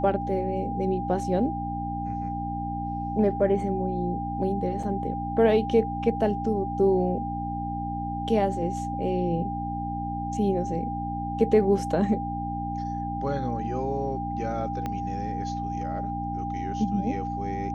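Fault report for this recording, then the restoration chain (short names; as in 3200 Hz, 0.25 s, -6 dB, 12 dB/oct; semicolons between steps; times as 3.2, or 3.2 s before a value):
hum 60 Hz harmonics 5 -33 dBFS
tone 800 Hz -31 dBFS
4.83 gap 4.8 ms
14.86 pop -18 dBFS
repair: de-click; de-hum 60 Hz, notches 5; notch 800 Hz, Q 30; interpolate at 4.83, 4.8 ms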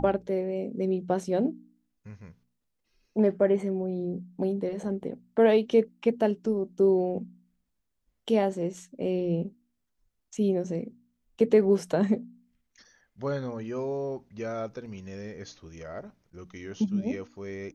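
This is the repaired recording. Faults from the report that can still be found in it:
14.86 pop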